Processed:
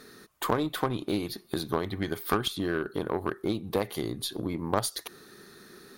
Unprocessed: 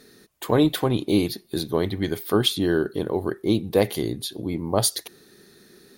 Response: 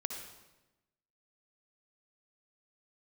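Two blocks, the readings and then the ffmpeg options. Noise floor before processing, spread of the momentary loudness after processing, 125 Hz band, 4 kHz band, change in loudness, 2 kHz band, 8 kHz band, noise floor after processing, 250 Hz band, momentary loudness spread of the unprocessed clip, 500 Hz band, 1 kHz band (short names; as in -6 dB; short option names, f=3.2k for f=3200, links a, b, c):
-54 dBFS, 15 LU, -8.0 dB, -8.0 dB, -7.5 dB, -2.5 dB, -8.5 dB, -54 dBFS, -8.0 dB, 9 LU, -7.5 dB, -1.0 dB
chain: -af "acompressor=threshold=-29dB:ratio=4,equalizer=f=1.2k:t=o:w=0.85:g=9.5,aeval=exprs='0.188*(cos(1*acos(clip(val(0)/0.188,-1,1)))-cos(1*PI/2))+0.075*(cos(2*acos(clip(val(0)/0.188,-1,1)))-cos(2*PI/2))+0.00944*(cos(8*acos(clip(val(0)/0.188,-1,1)))-cos(8*PI/2))':c=same"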